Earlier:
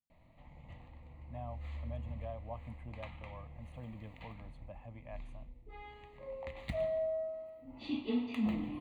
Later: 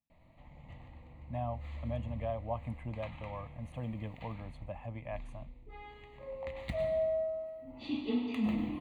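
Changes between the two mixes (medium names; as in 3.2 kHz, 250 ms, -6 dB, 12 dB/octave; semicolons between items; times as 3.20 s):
speech +8.0 dB; background: send +9.5 dB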